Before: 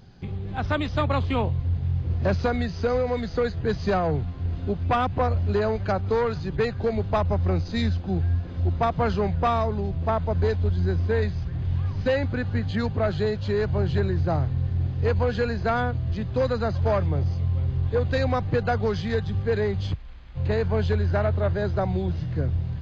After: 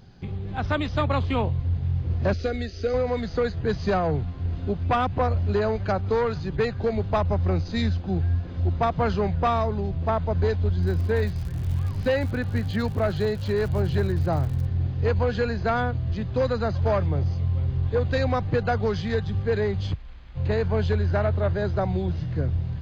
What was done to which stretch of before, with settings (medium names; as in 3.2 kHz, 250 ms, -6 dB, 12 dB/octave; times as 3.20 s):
2.33–2.94 s: static phaser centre 390 Hz, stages 4
10.82–14.64 s: crackle 140 per s -34 dBFS